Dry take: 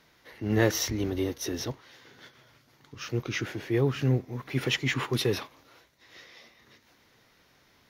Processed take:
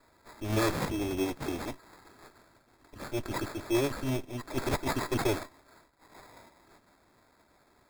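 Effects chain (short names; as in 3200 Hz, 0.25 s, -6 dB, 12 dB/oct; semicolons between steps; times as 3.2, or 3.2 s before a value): minimum comb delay 3 ms; sample-and-hold 15×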